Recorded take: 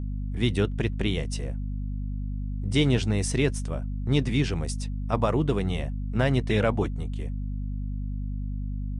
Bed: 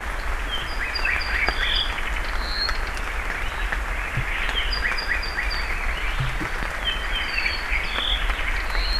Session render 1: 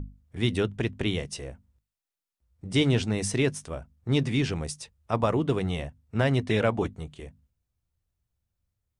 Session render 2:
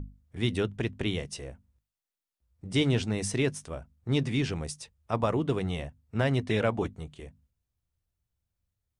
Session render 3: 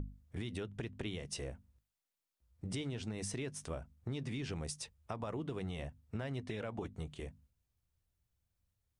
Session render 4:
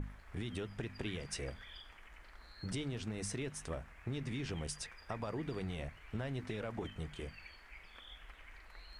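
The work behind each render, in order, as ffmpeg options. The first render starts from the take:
-af "bandreject=f=50:t=h:w=6,bandreject=f=100:t=h:w=6,bandreject=f=150:t=h:w=6,bandreject=f=200:t=h:w=6,bandreject=f=250:t=h:w=6"
-af "volume=0.75"
-af "alimiter=level_in=1.06:limit=0.0631:level=0:latency=1:release=198,volume=0.944,acompressor=threshold=0.0141:ratio=6"
-filter_complex "[1:a]volume=0.0299[s0];[0:a][s0]amix=inputs=2:normalize=0"

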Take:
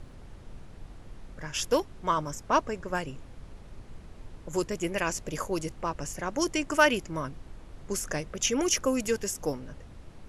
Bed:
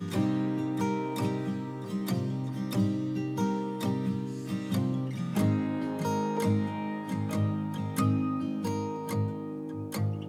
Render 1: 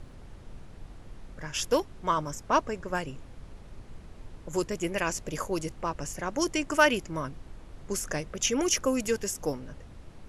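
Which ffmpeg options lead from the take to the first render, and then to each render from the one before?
-af anull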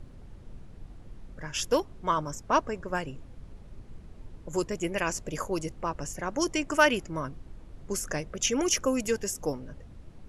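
-af "afftdn=nr=6:nf=-49"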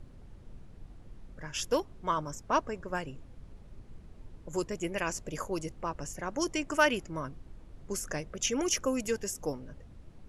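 -af "volume=0.668"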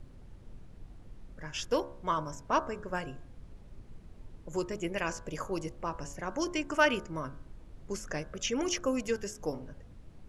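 -filter_complex "[0:a]acrossover=split=6200[s0][s1];[s1]acompressor=threshold=0.00178:ratio=4:attack=1:release=60[s2];[s0][s2]amix=inputs=2:normalize=0,bandreject=f=70.63:t=h:w=4,bandreject=f=141.26:t=h:w=4,bandreject=f=211.89:t=h:w=4,bandreject=f=282.52:t=h:w=4,bandreject=f=353.15:t=h:w=4,bandreject=f=423.78:t=h:w=4,bandreject=f=494.41:t=h:w=4,bandreject=f=565.04:t=h:w=4,bandreject=f=635.67:t=h:w=4,bandreject=f=706.3:t=h:w=4,bandreject=f=776.93:t=h:w=4,bandreject=f=847.56:t=h:w=4,bandreject=f=918.19:t=h:w=4,bandreject=f=988.82:t=h:w=4,bandreject=f=1059.45:t=h:w=4,bandreject=f=1130.08:t=h:w=4,bandreject=f=1200.71:t=h:w=4,bandreject=f=1271.34:t=h:w=4,bandreject=f=1341.97:t=h:w=4,bandreject=f=1412.6:t=h:w=4,bandreject=f=1483.23:t=h:w=4,bandreject=f=1553.86:t=h:w=4,bandreject=f=1624.49:t=h:w=4,bandreject=f=1695.12:t=h:w=4"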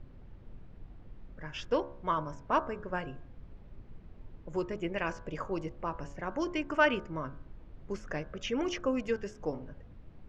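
-af "lowpass=3100"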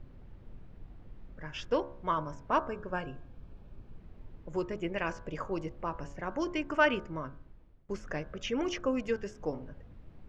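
-filter_complex "[0:a]asettb=1/sr,asplit=3[s0][s1][s2];[s0]atrim=end=2.684[s3];[s1]atrim=start=2.68:end=3.98,asetpts=PTS-STARTPTS,afade=t=in:d=0.004:c=qsin,afade=t=out:st=1.296:d=0.004:c=qsin,asuperstop=centerf=2000:order=4:qfactor=7.3[s4];[s2]atrim=start=3.976[s5];[s3][s4]acrossfade=d=0.004:c1=hsin:c2=qsin[s6];[s6][s5]acrossfade=d=0.004:c1=qsin:c2=hsin,asplit=2[s7][s8];[s7]atrim=end=7.89,asetpts=PTS-STARTPTS,afade=t=out:st=7.09:d=0.8:silence=0.0841395[s9];[s8]atrim=start=7.89,asetpts=PTS-STARTPTS,afade=t=in:d=0.004:c=hsin:silence=0.0841395[s10];[s9][s10]concat=n=2:v=0:a=1"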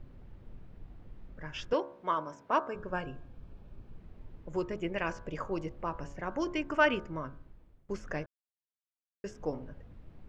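-filter_complex "[0:a]asettb=1/sr,asplit=3[s0][s1][s2];[s0]atrim=end=1.734[s3];[s1]atrim=start=1.73:end=2.75,asetpts=PTS-STARTPTS,afade=t=in:d=0.004:c=qsin,afade=t=out:st=1.016:d=0.004:c=qsin,highpass=250[s4];[s2]atrim=start=2.746[s5];[s3][s4]acrossfade=d=0.004:c1=hsin:c2=qsin[s6];[s6][s5]acrossfade=d=0.004:c1=qsin:c2=hsin,asplit=3[s7][s8][s9];[s7]atrim=end=8.26,asetpts=PTS-STARTPTS,afade=t=out:st=8.256:d=0.004:c=hsin[s10];[s8]atrim=start=8.26:end=9.24,asetpts=PTS-STARTPTS,volume=0[s11];[s9]atrim=start=9.24,asetpts=PTS-STARTPTS,afade=t=in:d=0.004:c=hsin[s12];[s10][s11][s12]concat=n=3:v=0:a=1"

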